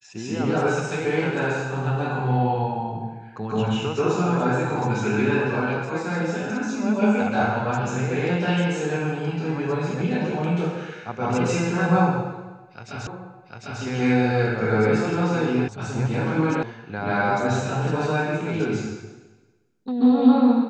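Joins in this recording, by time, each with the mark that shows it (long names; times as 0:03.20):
0:13.07: the same again, the last 0.75 s
0:15.68: cut off before it has died away
0:16.63: cut off before it has died away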